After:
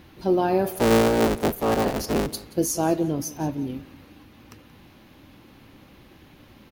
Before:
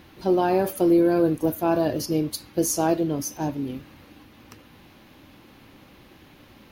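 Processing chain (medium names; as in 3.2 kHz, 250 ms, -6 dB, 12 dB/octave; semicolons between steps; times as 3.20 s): 0.71–2.27 s: cycle switcher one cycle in 3, inverted; bass shelf 250 Hz +4 dB; on a send: feedback delay 178 ms, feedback 26%, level -19 dB; on the sum: trim -1.5 dB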